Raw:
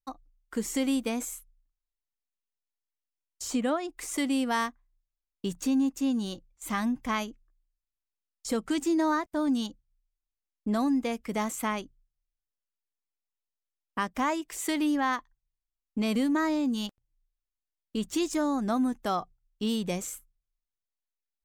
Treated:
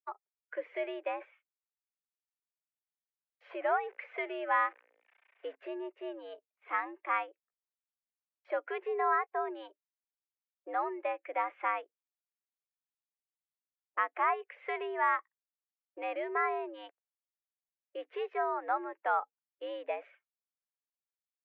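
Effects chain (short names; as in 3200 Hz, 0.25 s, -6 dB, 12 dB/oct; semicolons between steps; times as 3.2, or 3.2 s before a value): 3.44–5.55 zero-crossing step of -41.5 dBFS; spectral noise reduction 9 dB; mistuned SSB +94 Hz 420–2300 Hz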